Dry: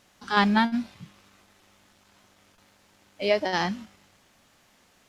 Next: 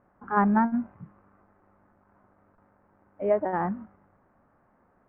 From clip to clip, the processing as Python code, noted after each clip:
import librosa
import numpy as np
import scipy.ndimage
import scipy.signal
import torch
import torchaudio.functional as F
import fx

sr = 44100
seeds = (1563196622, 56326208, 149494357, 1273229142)

y = scipy.signal.sosfilt(scipy.signal.cheby2(4, 50, 3600.0, 'lowpass', fs=sr, output='sos'), x)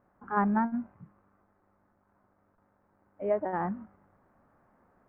y = fx.rider(x, sr, range_db=10, speed_s=2.0)
y = y * 10.0 ** (-3.5 / 20.0)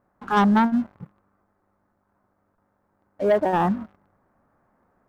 y = fx.leveller(x, sr, passes=2)
y = y * 10.0 ** (4.0 / 20.0)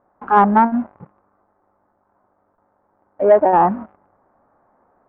y = fx.curve_eq(x, sr, hz=(190.0, 280.0, 830.0, 2400.0, 4000.0), db=(0, 5, 11, -1, -16))
y = y * 10.0 ** (-1.0 / 20.0)